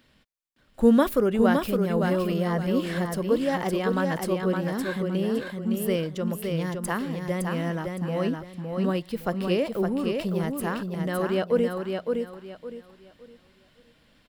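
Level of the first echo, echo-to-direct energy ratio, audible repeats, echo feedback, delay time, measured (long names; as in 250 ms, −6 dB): −4.5 dB, −4.0 dB, 3, 28%, 563 ms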